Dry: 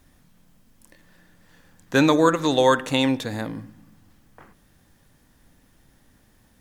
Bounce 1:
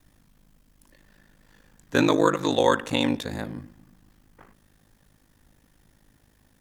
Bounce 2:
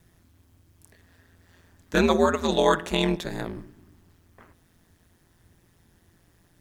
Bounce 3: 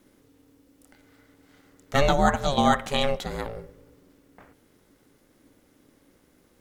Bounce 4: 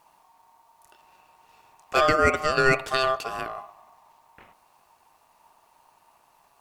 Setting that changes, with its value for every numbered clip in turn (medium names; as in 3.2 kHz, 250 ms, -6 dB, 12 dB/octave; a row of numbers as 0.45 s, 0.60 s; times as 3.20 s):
ring modulator, frequency: 26 Hz, 86 Hz, 280 Hz, 920 Hz